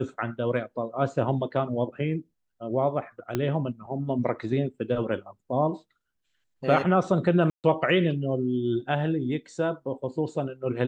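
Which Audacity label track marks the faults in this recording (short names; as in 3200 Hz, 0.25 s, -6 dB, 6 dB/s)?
3.350000	3.350000	pop -13 dBFS
7.500000	7.640000	gap 0.138 s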